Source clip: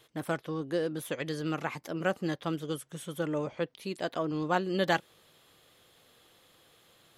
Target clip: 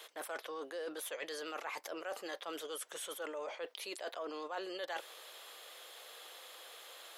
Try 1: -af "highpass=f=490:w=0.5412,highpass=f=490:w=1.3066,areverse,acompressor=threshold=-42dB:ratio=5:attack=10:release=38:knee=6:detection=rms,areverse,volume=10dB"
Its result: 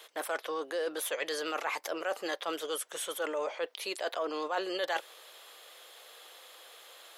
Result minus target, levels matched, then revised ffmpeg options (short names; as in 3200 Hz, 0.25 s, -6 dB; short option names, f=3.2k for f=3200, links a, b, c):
compressor: peak gain reduction -9 dB
-af "highpass=f=490:w=0.5412,highpass=f=490:w=1.3066,areverse,acompressor=threshold=-53dB:ratio=5:attack=10:release=38:knee=6:detection=rms,areverse,volume=10dB"